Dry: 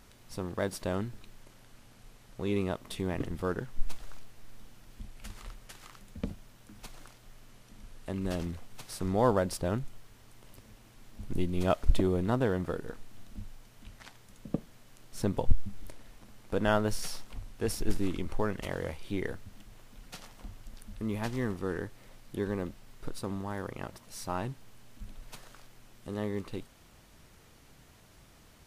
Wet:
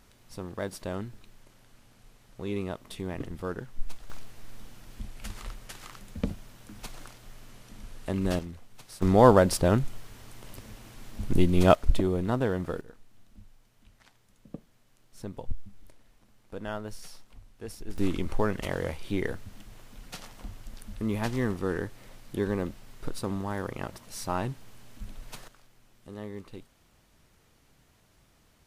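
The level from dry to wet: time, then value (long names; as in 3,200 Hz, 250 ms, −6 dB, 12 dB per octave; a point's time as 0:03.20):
−2 dB
from 0:04.10 +5.5 dB
from 0:08.39 −4 dB
from 0:09.02 +8.5 dB
from 0:11.75 +1 dB
from 0:12.81 −9 dB
from 0:17.98 +4 dB
from 0:25.48 −5.5 dB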